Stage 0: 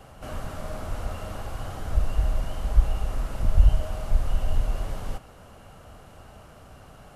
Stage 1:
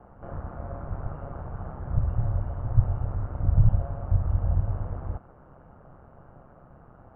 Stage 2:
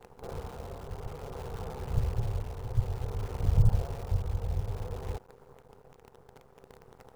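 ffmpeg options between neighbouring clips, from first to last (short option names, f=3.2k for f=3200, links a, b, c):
-af "lowpass=f=1.4k:w=0.5412,lowpass=f=1.4k:w=1.3066,aeval=exprs='val(0)*sin(2*PI*66*n/s)':c=same"
-af "acrusher=bits=8:dc=4:mix=0:aa=0.000001,tremolo=f=0.56:d=0.39,superequalizer=7b=3.55:9b=1.58,volume=-3.5dB"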